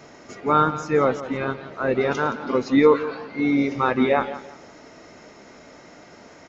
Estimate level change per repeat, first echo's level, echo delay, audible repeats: −11.0 dB, −14.0 dB, 171 ms, 2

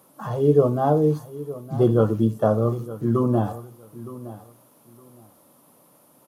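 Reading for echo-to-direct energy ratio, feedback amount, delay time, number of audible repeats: −16.0 dB, 20%, 915 ms, 2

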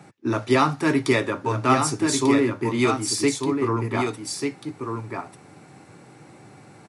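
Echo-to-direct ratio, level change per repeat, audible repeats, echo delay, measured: −5.5 dB, repeats not evenly spaced, 1, 1,192 ms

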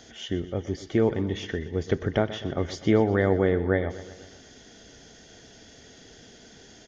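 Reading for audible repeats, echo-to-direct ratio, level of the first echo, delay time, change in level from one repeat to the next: 5, −13.0 dB, −15.0 dB, 123 ms, −4.5 dB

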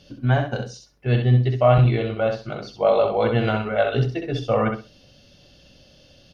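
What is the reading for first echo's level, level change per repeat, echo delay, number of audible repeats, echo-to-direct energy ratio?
−6.0 dB, −14.5 dB, 65 ms, 3, −6.0 dB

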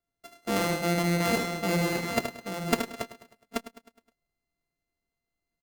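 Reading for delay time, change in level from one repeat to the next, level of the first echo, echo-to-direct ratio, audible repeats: 75 ms, repeats not evenly spaced, −7.5 dB, −3.0 dB, 8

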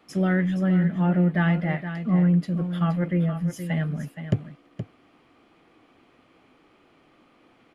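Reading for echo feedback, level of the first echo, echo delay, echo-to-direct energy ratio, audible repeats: repeats not evenly spaced, −10.0 dB, 471 ms, −10.0 dB, 1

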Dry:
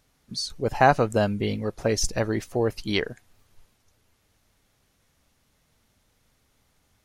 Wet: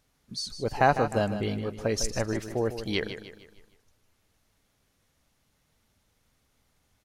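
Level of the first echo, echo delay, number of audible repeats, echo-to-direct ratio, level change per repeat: −10.5 dB, 153 ms, 4, −9.5 dB, −7.5 dB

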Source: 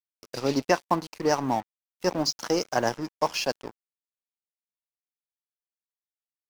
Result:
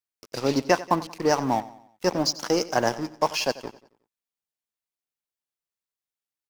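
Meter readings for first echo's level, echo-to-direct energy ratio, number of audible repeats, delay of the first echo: −17.5 dB, −16.5 dB, 3, 91 ms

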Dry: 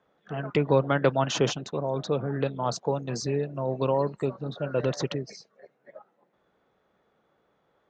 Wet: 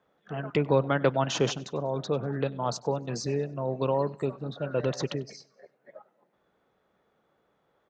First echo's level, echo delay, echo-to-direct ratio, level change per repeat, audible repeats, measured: −23.0 dB, 97 ms, −22.0 dB, −8.0 dB, 2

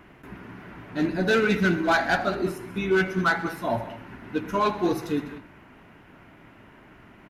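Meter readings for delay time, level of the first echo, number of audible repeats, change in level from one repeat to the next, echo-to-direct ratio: 81 ms, −19.5 dB, 3, repeats not evenly spaced, −13.0 dB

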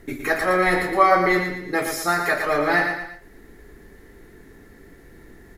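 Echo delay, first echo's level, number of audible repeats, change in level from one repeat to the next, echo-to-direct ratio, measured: 115 ms, −6.0 dB, 3, −7.5 dB, −5.0 dB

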